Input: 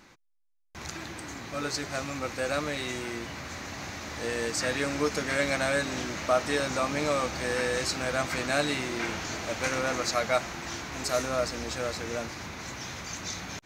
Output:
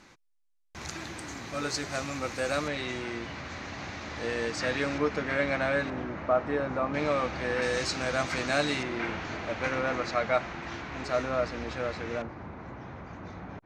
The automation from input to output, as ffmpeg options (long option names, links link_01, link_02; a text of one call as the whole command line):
ffmpeg -i in.wav -af "asetnsamples=nb_out_samples=441:pad=0,asendcmd='2.68 lowpass f 4300;4.98 lowpass f 2600;5.9 lowpass f 1400;6.94 lowpass f 3000;7.62 lowpass f 6400;8.83 lowpass f 2800;12.22 lowpass f 1100',lowpass=11000" out.wav